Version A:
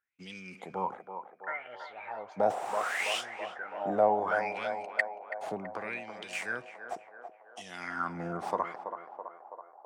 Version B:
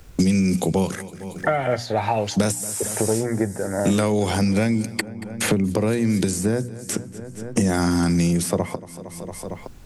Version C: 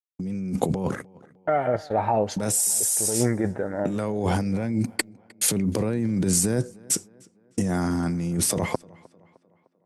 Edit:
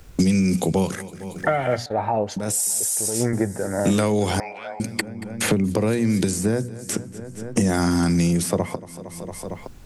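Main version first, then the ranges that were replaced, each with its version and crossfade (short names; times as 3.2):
B
1.86–3.33 from C
4.4–4.8 from A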